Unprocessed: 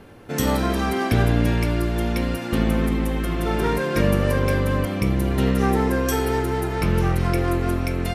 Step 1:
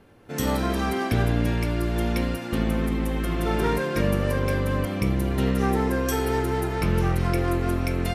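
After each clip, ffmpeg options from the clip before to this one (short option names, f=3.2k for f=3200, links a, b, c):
-af "dynaudnorm=f=220:g=3:m=9.5dB,volume=-9dB"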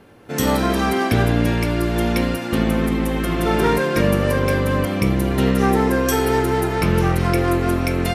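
-af "lowshelf=f=66:g=-9.5,volume=7dB"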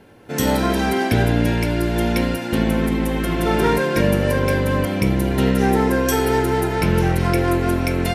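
-af "asuperstop=centerf=1200:order=4:qfactor=7.9"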